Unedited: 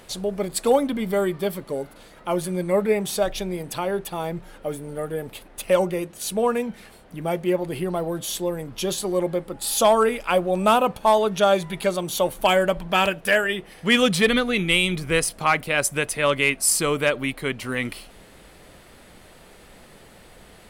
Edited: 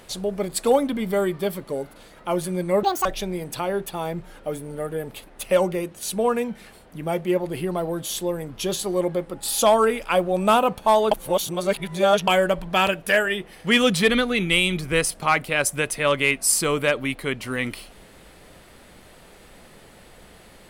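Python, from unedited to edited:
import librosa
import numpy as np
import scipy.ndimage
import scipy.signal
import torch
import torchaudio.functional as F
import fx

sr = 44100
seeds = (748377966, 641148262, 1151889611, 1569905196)

y = fx.edit(x, sr, fx.speed_span(start_s=2.83, length_s=0.41, speed=1.83),
    fx.reverse_span(start_s=11.3, length_s=1.16), tone=tone)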